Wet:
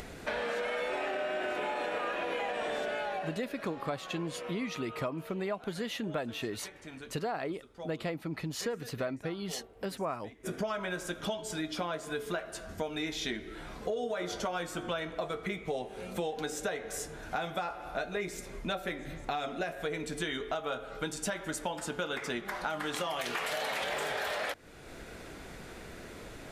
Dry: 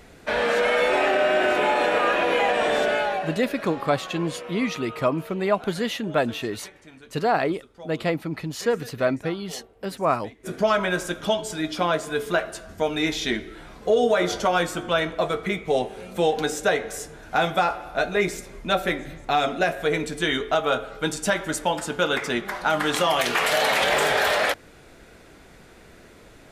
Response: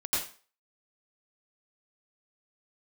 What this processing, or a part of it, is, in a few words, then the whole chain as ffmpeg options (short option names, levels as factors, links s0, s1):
upward and downward compression: -filter_complex "[0:a]acompressor=mode=upward:threshold=0.0158:ratio=2.5,acompressor=threshold=0.0316:ratio=5,asettb=1/sr,asplit=3[s0][s1][s2];[s0]atrim=end=9.994[s3];[s1]atrim=start=9.99:end=10.8,asetpts=PTS-STARTPTS,afade=t=in:d=0.004:c=qsin,afade=t=out:st=0.806:d=0.004:c=qsin,bandreject=f=4200:w=10[s4];[s2]atrim=start=10.796[s5];[s3][s4]acrossfade=d=0.004:c1=hsin:c2=qsin[s6];[s6][s5]acrossfade=d=0.004:c1=qsin:c2=hsin,volume=0.75"